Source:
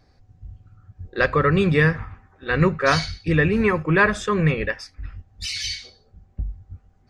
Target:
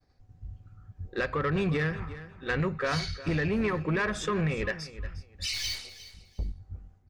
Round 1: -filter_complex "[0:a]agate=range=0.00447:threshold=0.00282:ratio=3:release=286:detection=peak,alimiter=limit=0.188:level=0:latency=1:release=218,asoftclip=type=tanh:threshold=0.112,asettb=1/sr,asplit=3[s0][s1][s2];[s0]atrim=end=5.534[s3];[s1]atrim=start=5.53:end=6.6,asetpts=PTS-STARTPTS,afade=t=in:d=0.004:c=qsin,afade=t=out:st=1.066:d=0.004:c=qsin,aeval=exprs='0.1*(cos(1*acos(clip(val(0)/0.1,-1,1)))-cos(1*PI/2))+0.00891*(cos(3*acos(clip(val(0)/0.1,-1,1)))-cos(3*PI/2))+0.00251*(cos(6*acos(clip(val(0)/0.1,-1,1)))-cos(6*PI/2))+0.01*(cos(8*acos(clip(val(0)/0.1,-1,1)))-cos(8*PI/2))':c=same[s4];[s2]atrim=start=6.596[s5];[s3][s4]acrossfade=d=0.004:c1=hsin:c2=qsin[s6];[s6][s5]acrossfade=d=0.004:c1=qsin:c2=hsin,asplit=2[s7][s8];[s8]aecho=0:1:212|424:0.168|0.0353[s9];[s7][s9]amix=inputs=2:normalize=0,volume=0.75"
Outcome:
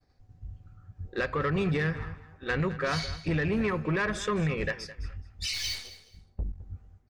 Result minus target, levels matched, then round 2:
echo 145 ms early
-filter_complex "[0:a]agate=range=0.00447:threshold=0.00282:ratio=3:release=286:detection=peak,alimiter=limit=0.188:level=0:latency=1:release=218,asoftclip=type=tanh:threshold=0.112,asettb=1/sr,asplit=3[s0][s1][s2];[s0]atrim=end=5.534[s3];[s1]atrim=start=5.53:end=6.6,asetpts=PTS-STARTPTS,afade=t=in:d=0.004:c=qsin,afade=t=out:st=1.066:d=0.004:c=qsin,aeval=exprs='0.1*(cos(1*acos(clip(val(0)/0.1,-1,1)))-cos(1*PI/2))+0.00891*(cos(3*acos(clip(val(0)/0.1,-1,1)))-cos(3*PI/2))+0.00251*(cos(6*acos(clip(val(0)/0.1,-1,1)))-cos(6*PI/2))+0.01*(cos(8*acos(clip(val(0)/0.1,-1,1)))-cos(8*PI/2))':c=same[s4];[s2]atrim=start=6.596[s5];[s3][s4]acrossfade=d=0.004:c1=hsin:c2=qsin[s6];[s6][s5]acrossfade=d=0.004:c1=qsin:c2=hsin,asplit=2[s7][s8];[s8]aecho=0:1:357|714:0.168|0.0353[s9];[s7][s9]amix=inputs=2:normalize=0,volume=0.75"

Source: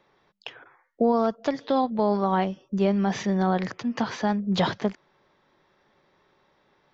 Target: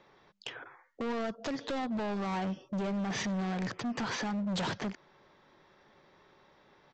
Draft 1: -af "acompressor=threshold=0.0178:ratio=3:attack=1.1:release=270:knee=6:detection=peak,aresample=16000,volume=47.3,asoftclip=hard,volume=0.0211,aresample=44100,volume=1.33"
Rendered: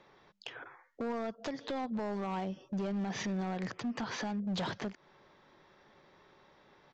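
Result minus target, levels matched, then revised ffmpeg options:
compression: peak gain reduction +6.5 dB
-af "acompressor=threshold=0.0562:ratio=3:attack=1.1:release=270:knee=6:detection=peak,aresample=16000,volume=47.3,asoftclip=hard,volume=0.0211,aresample=44100,volume=1.33"

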